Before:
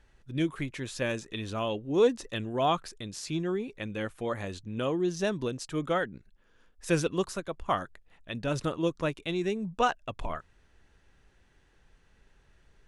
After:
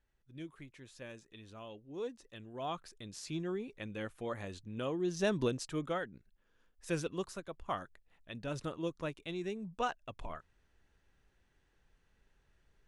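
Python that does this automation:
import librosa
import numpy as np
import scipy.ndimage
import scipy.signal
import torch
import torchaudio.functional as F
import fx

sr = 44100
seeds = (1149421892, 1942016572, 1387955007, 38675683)

y = fx.gain(x, sr, db=fx.line((2.29, -17.5), (3.18, -7.0), (4.98, -7.0), (5.43, 0.5), (6.0, -9.0)))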